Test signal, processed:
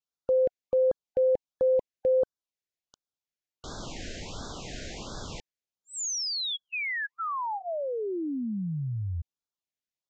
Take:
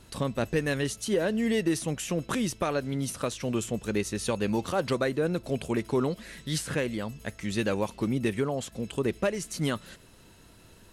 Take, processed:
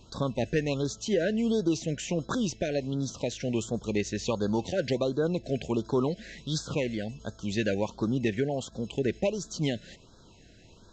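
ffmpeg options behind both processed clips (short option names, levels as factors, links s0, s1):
-af "aresample=16000,aresample=44100,afftfilt=real='re*(1-between(b*sr/1024,980*pow(2400/980,0.5+0.5*sin(2*PI*1.4*pts/sr))/1.41,980*pow(2400/980,0.5+0.5*sin(2*PI*1.4*pts/sr))*1.41))':imag='im*(1-between(b*sr/1024,980*pow(2400/980,0.5+0.5*sin(2*PI*1.4*pts/sr))/1.41,980*pow(2400/980,0.5+0.5*sin(2*PI*1.4*pts/sr))*1.41))':win_size=1024:overlap=0.75"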